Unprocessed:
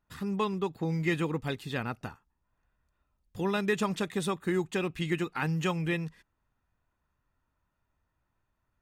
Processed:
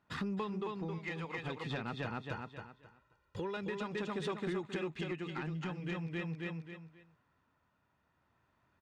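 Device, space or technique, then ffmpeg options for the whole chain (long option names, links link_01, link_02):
AM radio: -filter_complex "[0:a]asettb=1/sr,asplit=3[link_01][link_02][link_03];[link_01]atrim=end=0.984[link_04];[link_02]atrim=start=0.98:end=1.38,asetpts=PTS-STARTPTS,afade=type=in:duration=0.004:curve=qsin,afade=type=out:start_time=0.396:duration=0.004:curve=qsin,lowshelf=frequency=450:width_type=q:width=1.5:gain=-11[link_05];[link_03]atrim=start=1.376[link_06];[link_04][link_05]acrossfade=duration=0.004:curve1=hsin:curve2=qsin[link_07];[link_07][link_06]acrossfade=duration=0.004:curve1=qsin:curve2=hsin,asettb=1/sr,asplit=3[link_08][link_09][link_10];[link_08]atrim=end=2.004[link_11];[link_09]atrim=start=2:end=3.57,asetpts=PTS-STARTPTS,afade=type=in:duration=0.004:curve=qsin,afade=type=out:start_time=1.566:duration=0.004:curve=qsin,aecho=1:1:2.1:0.74,atrim=end_sample=69237[link_12];[link_10]atrim=start=3.566[link_13];[link_11][link_12]acrossfade=duration=0.004:curve1=hsin:curve2=qsin[link_14];[link_14][link_13]acrossfade=duration=0.004:curve1=qsin:curve2=hsin,asettb=1/sr,asplit=3[link_15][link_16][link_17];[link_15]atrim=end=5.354[link_18];[link_16]atrim=start=5.35:end=5.8,asetpts=PTS-STARTPTS,afade=type=in:duration=0.004:curve=qsin,afade=type=out:start_time=0.446:duration=0.004:curve=qsin,equalizer=frequency=210:width_type=o:width=0.66:gain=8.5[link_19];[link_17]atrim=start=5.796[link_20];[link_18][link_19]acrossfade=duration=0.004:curve1=hsin:curve2=qsin[link_21];[link_21][link_20]acrossfade=duration=0.004:curve1=qsin:curve2=hsin,highpass=120,lowpass=4400,aecho=1:1:267|534|801|1068:0.668|0.18|0.0487|0.0132,acompressor=threshold=-41dB:ratio=6,asoftclip=type=tanh:threshold=-34dB,tremolo=f=0.45:d=0.31,volume=7dB"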